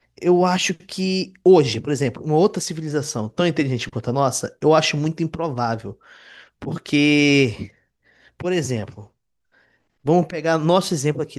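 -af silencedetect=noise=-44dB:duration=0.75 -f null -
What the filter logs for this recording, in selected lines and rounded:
silence_start: 9.07
silence_end: 10.05 | silence_duration: 0.98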